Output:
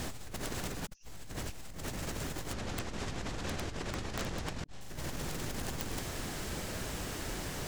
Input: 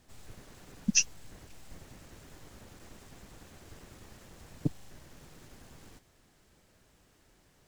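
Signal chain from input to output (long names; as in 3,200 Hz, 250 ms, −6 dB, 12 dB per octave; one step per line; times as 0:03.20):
0:02.53–0:04.81: low-pass filter 6,000 Hz 12 dB per octave
compressor whose output falls as the input rises −58 dBFS, ratio −1
wrap-around overflow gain 41 dB
level +14.5 dB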